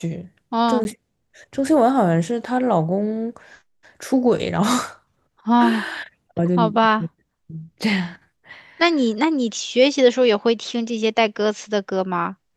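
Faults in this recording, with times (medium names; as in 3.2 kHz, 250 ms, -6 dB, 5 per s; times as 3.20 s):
0.84–0.85 s: dropout 11 ms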